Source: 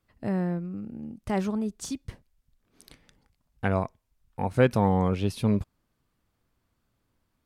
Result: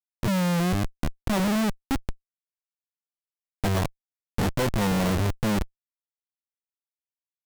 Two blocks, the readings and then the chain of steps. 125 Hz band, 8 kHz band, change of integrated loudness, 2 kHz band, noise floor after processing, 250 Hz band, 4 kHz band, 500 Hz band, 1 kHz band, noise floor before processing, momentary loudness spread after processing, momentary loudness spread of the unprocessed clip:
+2.0 dB, +7.5 dB, +1.5 dB, +4.0 dB, under -85 dBFS, +2.0 dB, +10.0 dB, -1.5 dB, +1.0 dB, -77 dBFS, 9 LU, 16 LU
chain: low-pass 2.3 kHz; Schmitt trigger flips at -32.5 dBFS; trim +7 dB

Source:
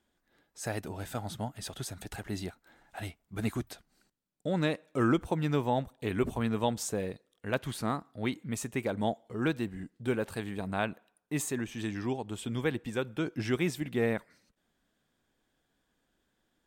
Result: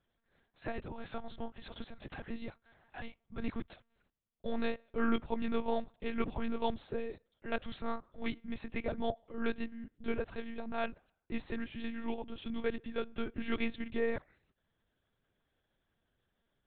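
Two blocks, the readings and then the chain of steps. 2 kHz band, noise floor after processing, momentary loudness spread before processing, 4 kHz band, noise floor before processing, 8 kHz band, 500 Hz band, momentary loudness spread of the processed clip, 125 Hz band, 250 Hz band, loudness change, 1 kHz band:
-5.0 dB, -82 dBFS, 10 LU, -6.0 dB, -78 dBFS, under -35 dB, -4.5 dB, 11 LU, -15.0 dB, -5.5 dB, -6.0 dB, -5.0 dB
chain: monotone LPC vocoder at 8 kHz 230 Hz; trim -3.5 dB

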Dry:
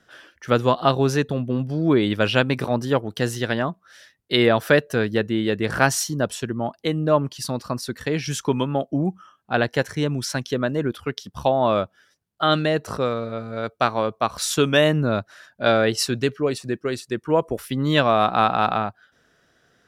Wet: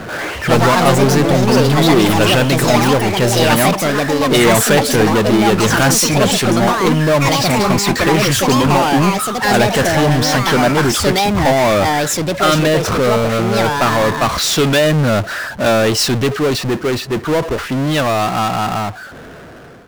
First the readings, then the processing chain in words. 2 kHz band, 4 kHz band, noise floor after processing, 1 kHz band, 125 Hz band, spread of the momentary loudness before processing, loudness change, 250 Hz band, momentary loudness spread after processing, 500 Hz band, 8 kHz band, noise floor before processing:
+9.0 dB, +10.5 dB, -31 dBFS, +9.0 dB, +10.0 dB, 9 LU, +9.0 dB, +9.5 dB, 6 LU, +7.5 dB, +13.5 dB, -65 dBFS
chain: fade out at the end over 4.54 s; level-controlled noise filter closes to 990 Hz, open at -17.5 dBFS; power-law waveshaper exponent 0.35; ever faster or slower copies 122 ms, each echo +5 st, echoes 2; trim -3.5 dB

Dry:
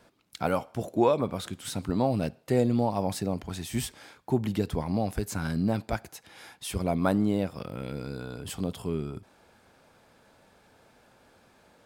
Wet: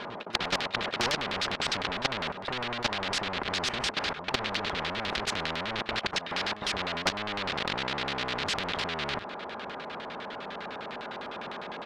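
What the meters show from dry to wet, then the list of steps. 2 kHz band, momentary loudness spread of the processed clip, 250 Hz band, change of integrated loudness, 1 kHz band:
+12.0 dB, 9 LU, -10.5 dB, -1.5 dB, +2.5 dB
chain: square wave that keeps the level; overdrive pedal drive 22 dB, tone 1.4 kHz, clips at -9.5 dBFS; bass shelf 190 Hz -4 dB; comb 4.9 ms, depth 38%; reverse echo 672 ms -22 dB; level held to a coarse grid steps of 18 dB; LFO low-pass square 9.9 Hz 920–3700 Hz; spectrum-flattening compressor 4:1; trim -1.5 dB

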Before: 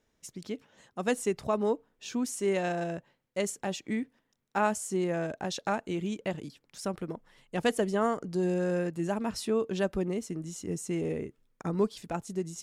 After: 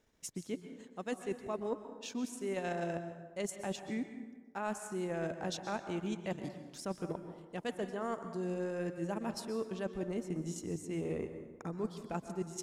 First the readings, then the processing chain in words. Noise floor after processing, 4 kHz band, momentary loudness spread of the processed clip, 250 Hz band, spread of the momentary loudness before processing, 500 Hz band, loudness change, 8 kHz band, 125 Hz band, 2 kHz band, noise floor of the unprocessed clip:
-57 dBFS, -6.5 dB, 7 LU, -6.5 dB, 12 LU, -7.5 dB, -7.5 dB, -7.0 dB, -6.0 dB, -7.5 dB, -76 dBFS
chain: transient shaper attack +1 dB, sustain -11 dB; reverse; compression 10:1, threshold -35 dBFS, peak gain reduction 15.5 dB; reverse; plate-style reverb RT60 1.3 s, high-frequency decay 0.55×, pre-delay 110 ms, DRR 8.5 dB; trim +1 dB

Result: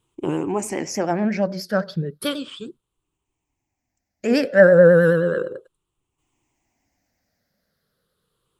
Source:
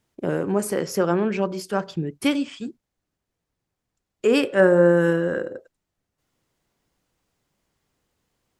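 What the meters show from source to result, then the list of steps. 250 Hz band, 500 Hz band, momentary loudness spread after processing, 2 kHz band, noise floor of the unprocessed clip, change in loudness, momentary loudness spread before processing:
0.0 dB, +3.5 dB, 17 LU, +4.0 dB, -82 dBFS, +3.0 dB, 14 LU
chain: drifting ripple filter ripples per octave 0.66, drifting -0.34 Hz, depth 14 dB; vibrato 9.4 Hz 67 cents; trim -1 dB

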